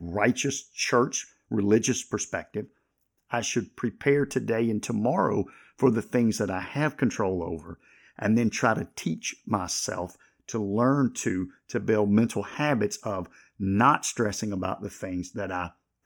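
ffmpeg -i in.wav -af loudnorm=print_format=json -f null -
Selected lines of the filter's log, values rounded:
"input_i" : "-27.2",
"input_tp" : "-6.9",
"input_lra" : "2.2",
"input_thresh" : "-37.5",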